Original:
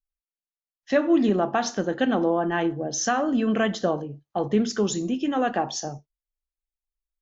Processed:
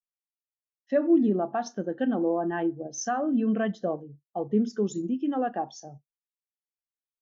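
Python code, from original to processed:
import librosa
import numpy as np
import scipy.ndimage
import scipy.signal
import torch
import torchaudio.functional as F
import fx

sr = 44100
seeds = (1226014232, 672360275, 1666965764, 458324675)

p1 = fx.level_steps(x, sr, step_db=14)
p2 = x + (p1 * librosa.db_to_amplitude(-1.0))
p3 = fx.spectral_expand(p2, sr, expansion=1.5)
y = p3 * librosa.db_to_amplitude(-7.0)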